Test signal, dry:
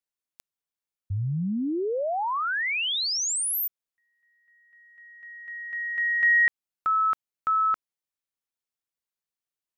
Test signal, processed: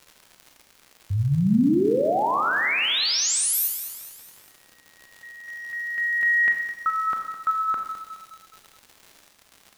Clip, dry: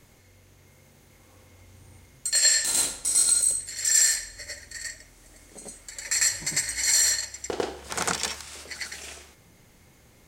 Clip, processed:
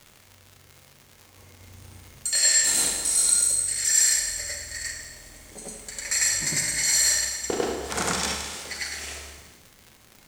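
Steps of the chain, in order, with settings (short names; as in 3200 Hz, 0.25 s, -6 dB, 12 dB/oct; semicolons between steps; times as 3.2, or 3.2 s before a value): gate with hold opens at -43 dBFS, hold 71 ms, range -6 dB; dynamic EQ 240 Hz, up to +5 dB, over -45 dBFS, Q 0.82; in parallel at +1.5 dB: limiter -19.5 dBFS; on the sum: crackle 150/s -31 dBFS; Schroeder reverb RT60 0.97 s, combs from 29 ms, DRR 3.5 dB; lo-fi delay 0.21 s, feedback 55%, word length 7-bit, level -13 dB; gain -4.5 dB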